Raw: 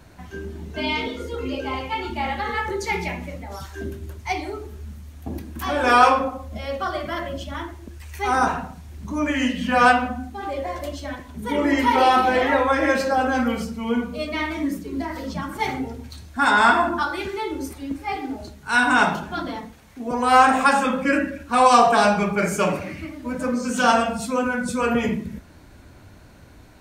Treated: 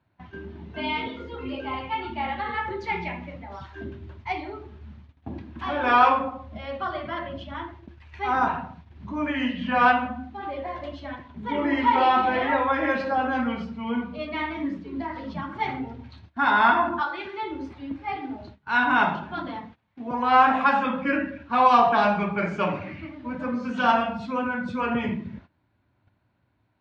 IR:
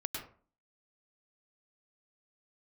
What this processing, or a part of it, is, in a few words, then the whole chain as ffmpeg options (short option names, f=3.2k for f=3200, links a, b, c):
guitar cabinet: -filter_complex "[0:a]highpass=85,equalizer=f=110:t=q:w=4:g=7,equalizer=f=460:t=q:w=4:g=-5,equalizer=f=950:t=q:w=4:g=4,lowpass=f=3.7k:w=0.5412,lowpass=f=3.7k:w=1.3066,asettb=1/sr,asplit=3[a][b][c];[a]atrim=end=17.014[d];[b]atrim=start=17.01:end=17.43,asetpts=PTS-STARTPTS,afade=t=in:d=0.004:c=qsin,afade=t=out:st=0.416:d=0.004:c=qsin,bass=f=250:g=-13,treble=f=4k:g=1[e];[c]atrim=start=17.426[f];[d][e]acrossfade=d=0.004:c1=hsin:c2=qsin[g];[g][f]acrossfade=d=0.004:c1=qsin:c2=hsin,agate=range=-18dB:threshold=-41dB:ratio=16:detection=peak,volume=-4dB"